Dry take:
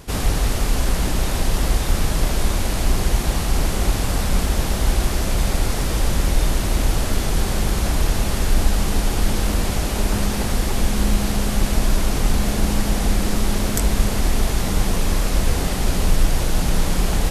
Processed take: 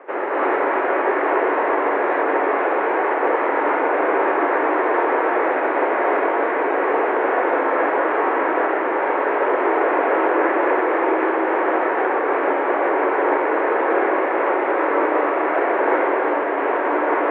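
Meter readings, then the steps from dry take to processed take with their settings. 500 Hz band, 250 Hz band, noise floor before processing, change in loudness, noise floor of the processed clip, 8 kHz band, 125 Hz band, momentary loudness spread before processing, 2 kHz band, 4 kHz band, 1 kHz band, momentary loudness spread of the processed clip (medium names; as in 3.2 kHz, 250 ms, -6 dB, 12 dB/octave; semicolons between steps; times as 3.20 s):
+11.5 dB, +0.5 dB, -23 dBFS, +3.0 dB, -21 dBFS, under -40 dB, under -35 dB, 1 LU, +8.5 dB, under -15 dB, +12.0 dB, 2 LU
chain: peak limiter -12.5 dBFS, peak gain reduction 8 dB; distance through air 190 m; gated-style reverb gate 360 ms rising, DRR -6.5 dB; mistuned SSB +120 Hz 250–2000 Hz; trim +6 dB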